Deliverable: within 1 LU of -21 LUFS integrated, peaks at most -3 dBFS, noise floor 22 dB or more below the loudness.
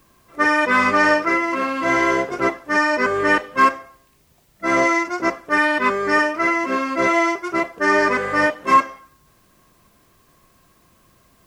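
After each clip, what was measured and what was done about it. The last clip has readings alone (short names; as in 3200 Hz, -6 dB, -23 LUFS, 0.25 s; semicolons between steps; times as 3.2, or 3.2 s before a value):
loudness -18.0 LUFS; peak -4.5 dBFS; loudness target -21.0 LUFS
-> gain -3 dB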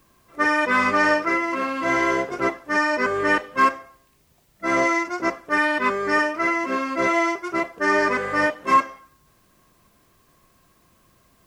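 loudness -21.0 LUFS; peak -7.5 dBFS; noise floor -61 dBFS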